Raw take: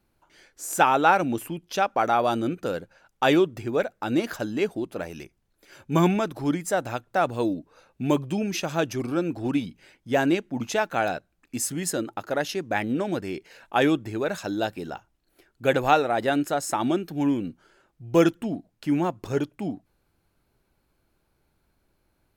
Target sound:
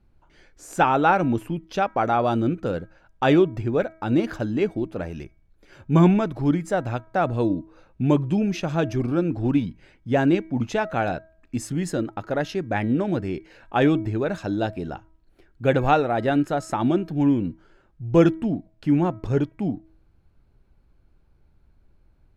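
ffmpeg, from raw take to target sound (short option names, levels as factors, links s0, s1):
-af "aemphasis=mode=reproduction:type=bsi,bandreject=f=321.6:t=h:w=4,bandreject=f=643.2:t=h:w=4,bandreject=f=964.8:t=h:w=4,bandreject=f=1286.4:t=h:w=4,bandreject=f=1608:t=h:w=4,bandreject=f=1929.6:t=h:w=4,bandreject=f=2251.2:t=h:w=4"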